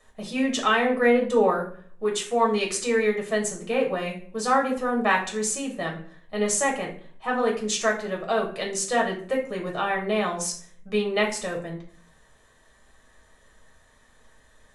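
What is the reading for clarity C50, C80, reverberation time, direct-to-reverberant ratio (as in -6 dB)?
9.0 dB, 13.0 dB, 0.50 s, -1.0 dB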